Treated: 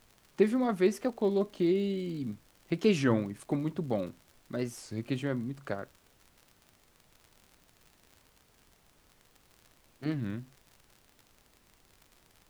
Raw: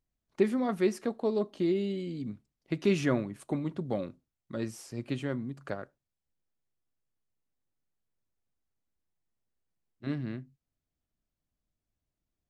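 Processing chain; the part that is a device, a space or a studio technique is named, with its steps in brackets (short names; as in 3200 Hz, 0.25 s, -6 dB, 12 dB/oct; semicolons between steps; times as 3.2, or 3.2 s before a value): warped LP (record warp 33 1/3 rpm, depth 160 cents; crackle 64/s -44 dBFS; pink noise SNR 31 dB); gain +1 dB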